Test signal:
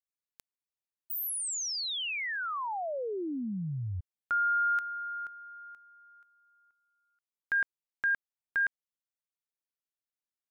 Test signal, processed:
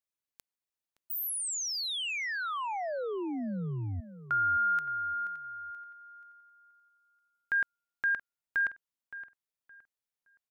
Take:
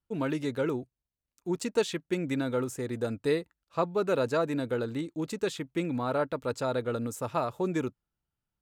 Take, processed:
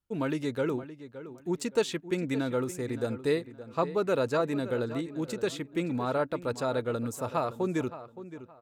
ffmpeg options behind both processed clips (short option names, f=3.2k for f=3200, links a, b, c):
-filter_complex "[0:a]asplit=2[a][b];[b]adelay=568,lowpass=f=3.1k:p=1,volume=-13.5dB,asplit=2[c][d];[d]adelay=568,lowpass=f=3.1k:p=1,volume=0.27,asplit=2[e][f];[f]adelay=568,lowpass=f=3.1k:p=1,volume=0.27[g];[a][c][e][g]amix=inputs=4:normalize=0"